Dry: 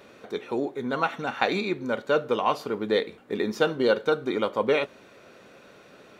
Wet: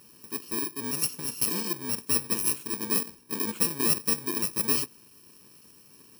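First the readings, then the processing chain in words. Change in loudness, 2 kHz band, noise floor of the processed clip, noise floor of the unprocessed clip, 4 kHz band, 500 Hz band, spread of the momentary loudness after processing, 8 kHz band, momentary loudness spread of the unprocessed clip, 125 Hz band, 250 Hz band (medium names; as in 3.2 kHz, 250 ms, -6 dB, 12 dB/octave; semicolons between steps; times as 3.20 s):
0.0 dB, -8.5 dB, -55 dBFS, -52 dBFS, +1.0 dB, -14.5 dB, 7 LU, no reading, 7 LU, -1.5 dB, -4.5 dB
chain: bit-reversed sample order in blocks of 64 samples; trim -3 dB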